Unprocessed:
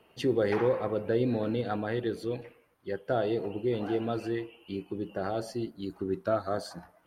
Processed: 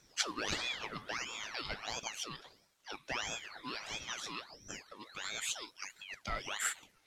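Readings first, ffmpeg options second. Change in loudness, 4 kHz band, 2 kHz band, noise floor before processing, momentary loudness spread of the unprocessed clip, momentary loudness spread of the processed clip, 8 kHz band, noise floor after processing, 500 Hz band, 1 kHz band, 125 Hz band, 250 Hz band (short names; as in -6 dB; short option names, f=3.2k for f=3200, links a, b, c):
-8.0 dB, +7.5 dB, +2.5 dB, -64 dBFS, 10 LU, 12 LU, n/a, -70 dBFS, -20.5 dB, -6.5 dB, -17.5 dB, -19.5 dB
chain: -af "bandpass=f=5.3k:t=q:w=1.8:csg=0,aeval=exprs='val(0)*sin(2*PI*1800*n/s+1800*0.65/1.5*sin(2*PI*1.5*n/s))':c=same,volume=15.5dB"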